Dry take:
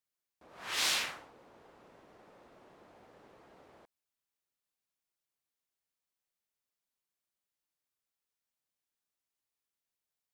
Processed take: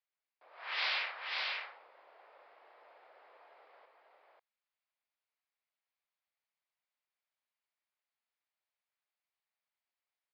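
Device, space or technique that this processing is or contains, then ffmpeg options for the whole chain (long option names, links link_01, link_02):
musical greeting card: -af "lowpass=frequency=1900:poles=1,highshelf=frequency=6900:gain=8.5,aresample=11025,aresample=44100,highpass=frequency=570:width=0.5412,highpass=frequency=570:width=1.3066,equalizer=frequency=2200:width_type=o:width=0.54:gain=5,aecho=1:1:541:0.708"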